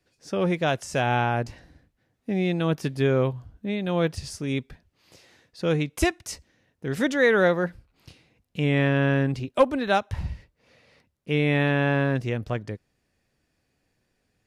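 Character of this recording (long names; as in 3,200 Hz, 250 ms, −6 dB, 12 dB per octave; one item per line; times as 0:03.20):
background noise floor −74 dBFS
spectral slope −5.5 dB per octave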